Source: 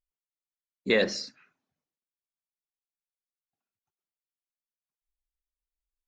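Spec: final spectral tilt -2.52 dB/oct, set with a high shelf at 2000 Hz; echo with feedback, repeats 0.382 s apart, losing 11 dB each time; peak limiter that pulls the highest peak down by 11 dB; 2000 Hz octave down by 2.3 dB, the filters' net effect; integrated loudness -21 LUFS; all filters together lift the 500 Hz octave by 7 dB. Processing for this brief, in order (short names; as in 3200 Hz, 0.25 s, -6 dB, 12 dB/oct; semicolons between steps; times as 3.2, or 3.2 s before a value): bell 500 Hz +7.5 dB; high shelf 2000 Hz +8 dB; bell 2000 Hz -7.5 dB; limiter -18 dBFS; feedback echo 0.382 s, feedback 28%, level -11 dB; gain +9.5 dB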